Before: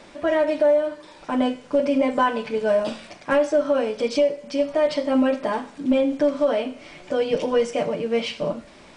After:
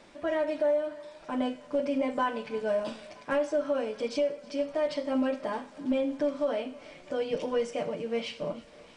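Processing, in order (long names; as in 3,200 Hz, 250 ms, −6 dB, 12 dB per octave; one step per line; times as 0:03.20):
feedback echo with a high-pass in the loop 319 ms, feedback 77%, high-pass 400 Hz, level −21 dB
level −8.5 dB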